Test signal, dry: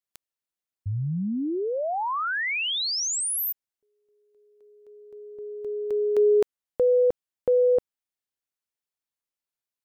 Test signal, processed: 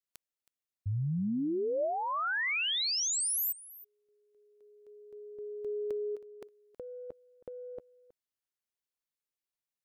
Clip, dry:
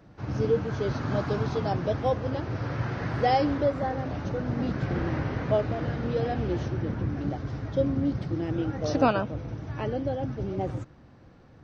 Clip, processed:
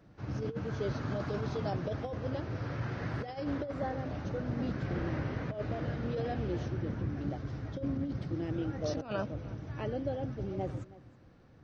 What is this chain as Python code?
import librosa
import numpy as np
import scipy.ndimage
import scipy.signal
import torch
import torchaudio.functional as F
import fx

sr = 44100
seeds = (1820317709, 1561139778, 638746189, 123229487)

p1 = fx.over_compress(x, sr, threshold_db=-26.0, ratio=-0.5)
p2 = fx.peak_eq(p1, sr, hz=870.0, db=-2.5, octaves=0.77)
p3 = p2 + fx.echo_single(p2, sr, ms=320, db=-19.0, dry=0)
p4 = fx.dynamic_eq(p3, sr, hz=600.0, q=7.1, threshold_db=-43.0, ratio=4.0, max_db=3)
y = F.gain(torch.from_numpy(p4), -6.5).numpy()